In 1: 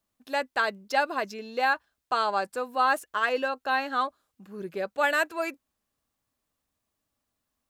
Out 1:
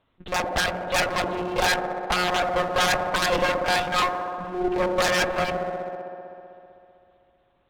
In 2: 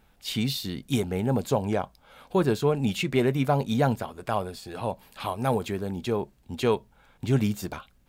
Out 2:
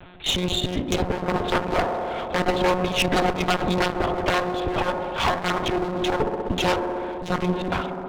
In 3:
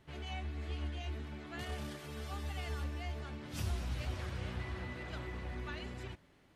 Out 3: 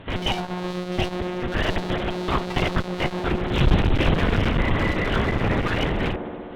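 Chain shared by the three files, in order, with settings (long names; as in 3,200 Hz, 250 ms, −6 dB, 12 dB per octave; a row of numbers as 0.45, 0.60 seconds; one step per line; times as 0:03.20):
one-pitch LPC vocoder at 8 kHz 180 Hz
dynamic equaliser 2,200 Hz, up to −6 dB, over −51 dBFS, Q 5.8
in parallel at −1 dB: downward compressor, threshold −31 dBFS
on the sum: wave folding −21.5 dBFS
on a send: delay with a band-pass on its return 64 ms, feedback 85%, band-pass 480 Hz, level −7.5 dB
on the sum: asymmetric clip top −38 dBFS, bottom −21.5 dBFS
loudness normalisation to −24 LKFS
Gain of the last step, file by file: +9.5, +11.0, +16.5 decibels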